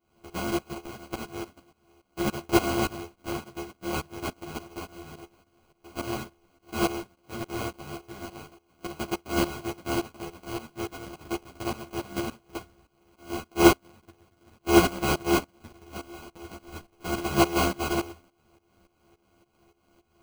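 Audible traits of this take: a buzz of ramps at a fixed pitch in blocks of 128 samples; tremolo saw up 3.5 Hz, depth 90%; aliases and images of a low sample rate 1800 Hz, jitter 0%; a shimmering, thickened sound

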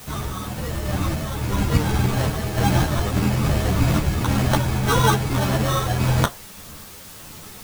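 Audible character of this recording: aliases and images of a low sample rate 2400 Hz, jitter 0%; random-step tremolo 3.5 Hz; a quantiser's noise floor 8-bit, dither triangular; a shimmering, thickened sound

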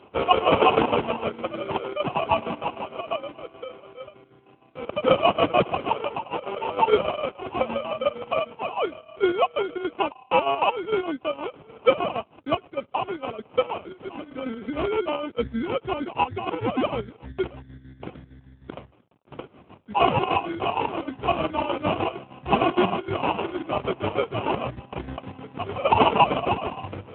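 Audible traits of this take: a quantiser's noise floor 10-bit, dither none; chopped level 6.5 Hz, depth 60%, duty 55%; aliases and images of a low sample rate 1800 Hz, jitter 0%; AMR-NB

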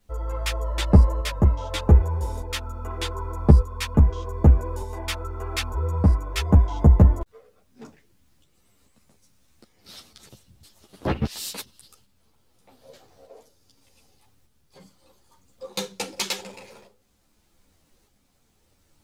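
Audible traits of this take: a quantiser's noise floor 12-bit, dither none; tremolo saw up 0.83 Hz, depth 40%; a shimmering, thickened sound

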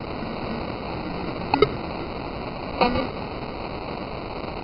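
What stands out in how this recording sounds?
a quantiser's noise floor 6-bit, dither triangular; phasing stages 2, 4 Hz, lowest notch 580–2900 Hz; aliases and images of a low sample rate 1700 Hz, jitter 0%; MP2

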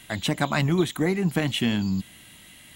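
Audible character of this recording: noise floor -50 dBFS; spectral tilt -5.0 dB/oct

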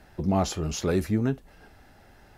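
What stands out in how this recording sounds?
noise floor -55 dBFS; spectral tilt -6.0 dB/oct

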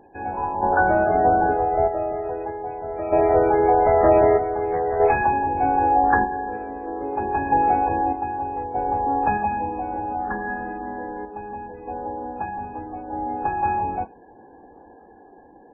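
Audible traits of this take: random-step tremolo 1.6 Hz, depth 80%; MP3

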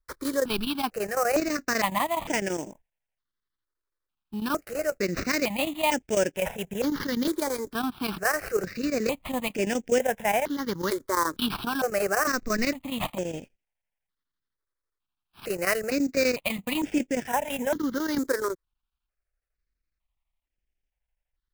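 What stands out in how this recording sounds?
aliases and images of a low sample rate 7100 Hz, jitter 20%; chopped level 12 Hz, depth 65%, duty 80%; notches that jump at a steady rate 2.2 Hz 740–4100 Hz

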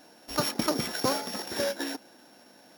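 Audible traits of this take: a buzz of ramps at a fixed pitch in blocks of 8 samples

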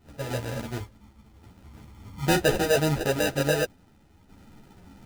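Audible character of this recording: aliases and images of a low sample rate 1100 Hz, jitter 0%; random-step tremolo 3.5 Hz; a quantiser's noise floor 12-bit, dither none; a shimmering, thickened sound

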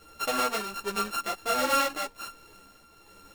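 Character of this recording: a buzz of ramps at a fixed pitch in blocks of 32 samples; tremolo triangle 1.3 Hz, depth 50%; a shimmering, thickened sound

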